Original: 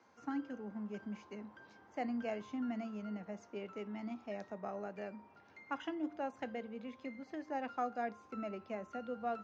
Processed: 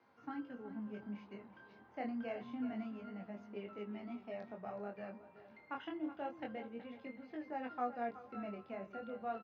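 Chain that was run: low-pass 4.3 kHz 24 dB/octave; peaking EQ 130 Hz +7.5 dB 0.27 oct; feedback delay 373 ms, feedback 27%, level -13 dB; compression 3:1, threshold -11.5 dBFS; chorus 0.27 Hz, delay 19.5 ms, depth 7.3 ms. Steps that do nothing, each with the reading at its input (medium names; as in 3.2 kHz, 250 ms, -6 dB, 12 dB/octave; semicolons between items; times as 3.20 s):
compression, threshold -11.5 dBFS: peak at its input -25.5 dBFS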